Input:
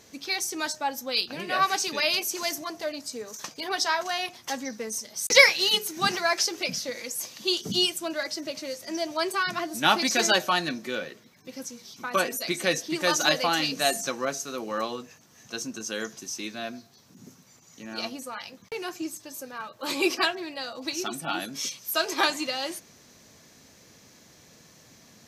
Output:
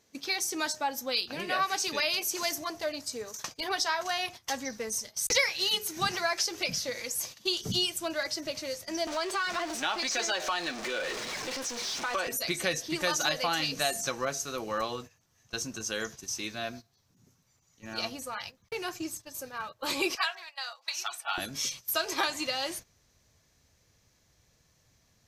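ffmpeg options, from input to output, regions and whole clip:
-filter_complex "[0:a]asettb=1/sr,asplit=3[a][b][c];[a]atrim=end=9.074[d];[b]atrim=start=9.07:end=12.27,asetpts=PTS-STARTPTS,afade=t=in:d=0.004:c=qsin,afade=t=out:st=3.196:d=0.004:c=qsin,aeval=exprs='val(0)+0.5*0.0398*sgn(val(0))':c=same,acompressor=threshold=-29dB:ratio=2:attack=3.2:release=140:knee=1:detection=peak,acrossover=split=260 8000:gain=0.0794 1 0.141[e][f][g];[e][f][g]amix=inputs=3:normalize=0[h];[c]atrim=start=12.266[i];[d][h]acrossfade=d=0.004:c1=hsin:c2=qsin[j];[j][i]acrossfade=d=0.004:c1=qsin:c2=hsin,asettb=1/sr,asplit=3[k][l][m];[k]atrim=end=20.154[n];[l]atrim=start=20.15:end=21.38,asetpts=PTS-STARTPTS,afade=t=in:d=0.004:c=qsin,afade=t=out:st=1.226:d=0.004:c=qsin,highpass=f=810:w=0.5412,highpass=f=810:w=1.3066,highshelf=f=5.3k:g=-4[o];[m]atrim=start=21.376[p];[n][o]acrossfade=d=0.004:c1=hsin:c2=qsin[q];[q][p]acrossfade=d=0.004:c1=qsin:c2=hsin,agate=range=-14dB:threshold=-41dB:ratio=16:detection=peak,asubboost=boost=9.5:cutoff=72,acompressor=threshold=-26dB:ratio=3"

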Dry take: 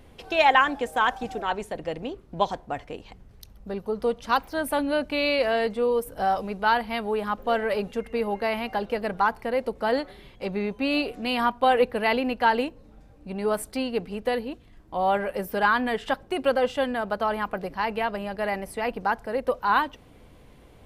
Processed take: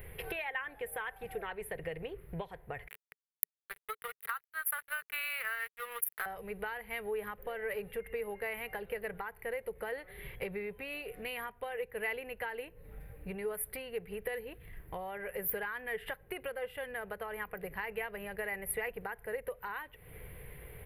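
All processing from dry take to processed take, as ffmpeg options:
-filter_complex "[0:a]asettb=1/sr,asplit=3[a][b][c];[a]atrim=end=2.884[d];[b]atrim=start=2.88:end=6.26,asetpts=PTS-STARTPTS,afade=t=in:d=0.004:c=qsin,afade=t=out:st=3.376:d=0.004:c=qsin,highpass=f=1.3k:t=q:w=8.5,highshelf=f=6.1k:g=8.5,aeval=exprs='sgn(val(0))*max(abs(val(0))-0.0224,0)':c=same[e];[c]atrim=start=6.256[f];[d][e]acrossfade=d=0.004:c1=hsin:c2=qsin[g];[g][f]acrossfade=d=0.004:c1=qsin:c2=hsin,acompressor=threshold=-37dB:ratio=12,firequalizer=gain_entry='entry(160,0);entry(250,-18);entry(430,2);entry(610,-7);entry(1200,-6);entry(1900,7);entry(3400,-8);entry(6300,-23);entry(11000,14)':delay=0.05:min_phase=1,volume=3.5dB"

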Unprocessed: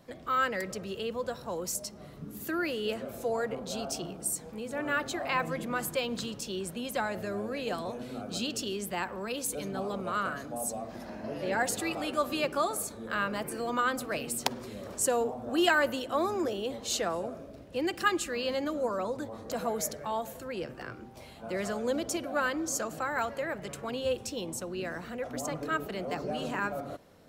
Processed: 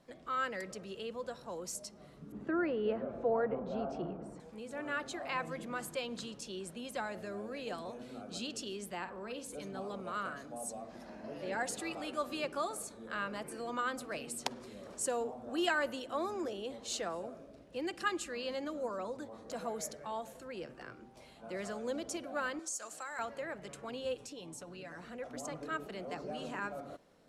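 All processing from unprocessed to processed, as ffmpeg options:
-filter_complex "[0:a]asettb=1/sr,asplit=3[a][b][c];[a]atrim=end=2.324[d];[b]atrim=start=2.32:end=4.4,asetpts=PTS-STARTPTS,afade=t=in:d=0.004:c=qsin,afade=t=out:st=2.076:d=0.004:c=qsin,lowpass=1.3k,acontrast=85[e];[c]atrim=start=4.396[f];[d][e]acrossfade=d=0.004:c1=hsin:c2=qsin[g];[g][f]acrossfade=d=0.004:c1=qsin:c2=hsin,asettb=1/sr,asplit=3[h][i][j];[h]atrim=end=8.974[k];[i]atrim=start=8.97:end=9.6,asetpts=PTS-STARTPTS,afade=t=in:d=0.004:c=qsin,afade=t=out:st=0.626:d=0.004:c=qsin,highshelf=f=3.6k:g=-8,asplit=2[l][m];[m]adelay=50,volume=-10dB[n];[l][n]amix=inputs=2:normalize=0,atrim=end_sample=27783[o];[j]atrim=start=9.596[p];[k][o]acrossfade=d=0.004:c1=hsin:c2=qsin[q];[q][p]acrossfade=d=0.004:c1=qsin:c2=hsin,asettb=1/sr,asplit=3[r][s][t];[r]atrim=end=22.594[u];[s]atrim=start=22.59:end=23.19,asetpts=PTS-STARTPTS,afade=t=in:d=0.004:c=qsin,afade=t=out:st=0.596:d=0.004:c=qsin,highpass=f=980:p=1,equalizer=f=8.4k:w=0.84:g=11.5,acompressor=threshold=-31dB:ratio=3:attack=3.2:release=140:knee=1:detection=peak[v];[t]atrim=start=23.186[w];[u][v]acrossfade=d=0.004:c1=hsin:c2=qsin[x];[x][w]acrossfade=d=0.004:c1=qsin:c2=hsin,asettb=1/sr,asplit=3[y][z][aa];[y]atrim=end=24.144[ab];[z]atrim=start=24.14:end=24.98,asetpts=PTS-STARTPTS,afade=t=in:d=0.004:c=qsin,afade=t=out:st=0.836:d=0.004:c=qsin,aecho=1:1:6.9:0.65,atrim=end_sample=37044,acompressor=threshold=-37dB:ratio=3:attack=3.2:release=140:knee=1:detection=peak[ac];[aa]atrim=start=24.976[ad];[ab][ac]acrossfade=d=0.004:c1=hsin:c2=qsin[ae];[ae][ad]acrossfade=d=0.004:c1=qsin:c2=hsin,lowpass=f=11k:w=0.5412,lowpass=f=11k:w=1.3066,equalizer=f=90:t=o:w=0.84:g=-8.5,volume=-7dB"

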